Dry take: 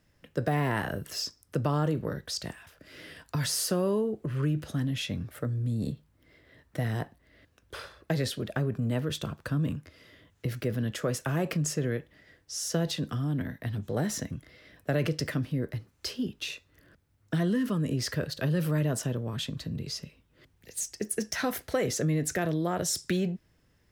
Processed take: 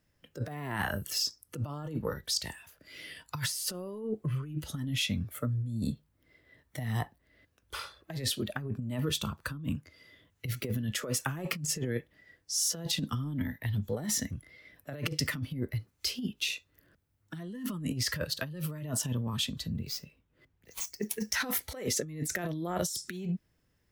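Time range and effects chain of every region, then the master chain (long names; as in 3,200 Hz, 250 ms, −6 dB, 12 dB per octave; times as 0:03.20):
0:19.71–0:21.32: running median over 5 samples + parametric band 4,200 Hz −3.5 dB 1.3 octaves
whole clip: high-shelf EQ 11,000 Hz +6.5 dB; noise reduction from a noise print of the clip's start 10 dB; compressor whose output falls as the input rises −32 dBFS, ratio −0.5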